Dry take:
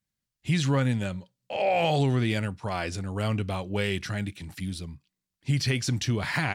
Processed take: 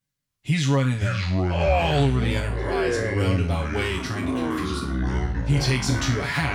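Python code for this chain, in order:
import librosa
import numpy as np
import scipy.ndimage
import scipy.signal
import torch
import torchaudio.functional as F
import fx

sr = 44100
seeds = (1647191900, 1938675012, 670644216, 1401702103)

y = fx.spec_trails(x, sr, decay_s=0.41)
y = y + 0.76 * np.pad(y, (int(7.1 * sr / 1000.0), 0))[:len(y)]
y = fx.echo_pitch(y, sr, ms=278, semitones=-7, count=2, db_per_echo=-3.0)
y = y * librosa.db_to_amplitude(-1.0)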